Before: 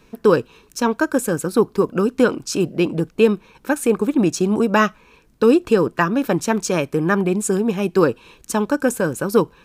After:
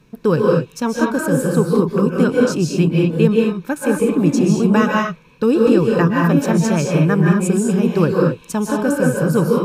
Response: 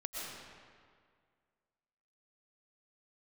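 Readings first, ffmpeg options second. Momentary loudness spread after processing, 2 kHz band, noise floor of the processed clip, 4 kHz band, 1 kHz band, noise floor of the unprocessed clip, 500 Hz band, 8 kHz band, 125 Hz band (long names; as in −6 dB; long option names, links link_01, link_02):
5 LU, +0.5 dB, −47 dBFS, 0.0 dB, 0.0 dB, −54 dBFS, +1.0 dB, −1.0 dB, +9.5 dB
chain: -filter_complex "[0:a]equalizer=frequency=150:width=1.6:gain=12.5[link_01];[1:a]atrim=start_sample=2205,afade=type=out:start_time=0.25:duration=0.01,atrim=end_sample=11466,asetrate=35280,aresample=44100[link_02];[link_01][link_02]afir=irnorm=-1:irlink=0,volume=-1dB"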